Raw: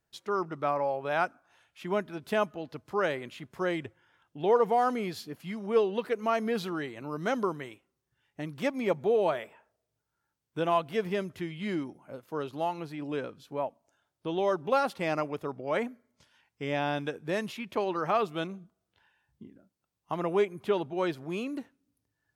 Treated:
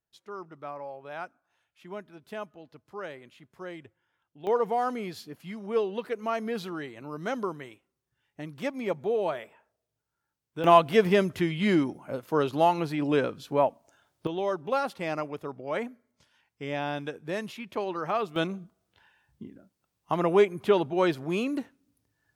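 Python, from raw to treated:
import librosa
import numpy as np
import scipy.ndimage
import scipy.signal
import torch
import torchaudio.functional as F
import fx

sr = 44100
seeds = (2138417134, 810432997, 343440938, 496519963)

y = fx.gain(x, sr, db=fx.steps((0.0, -10.0), (4.47, -2.0), (10.64, 9.0), (14.27, -1.5), (18.36, 5.5)))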